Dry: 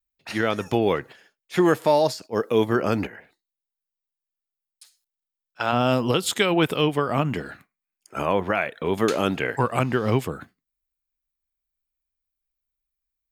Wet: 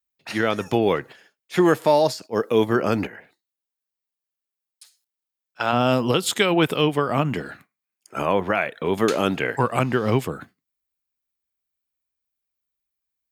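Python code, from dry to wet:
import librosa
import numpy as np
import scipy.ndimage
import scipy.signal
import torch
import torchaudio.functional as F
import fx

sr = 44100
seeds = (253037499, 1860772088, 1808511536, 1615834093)

y = scipy.signal.sosfilt(scipy.signal.butter(2, 86.0, 'highpass', fs=sr, output='sos'), x)
y = y * librosa.db_to_amplitude(1.5)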